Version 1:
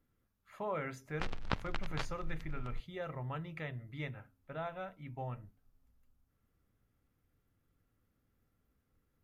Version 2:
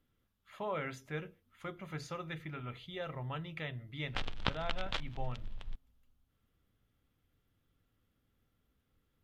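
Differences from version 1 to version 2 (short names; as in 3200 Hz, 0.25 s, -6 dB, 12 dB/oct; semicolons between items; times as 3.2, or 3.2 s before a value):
background: entry +2.95 s; master: add bell 3300 Hz +9.5 dB 0.67 oct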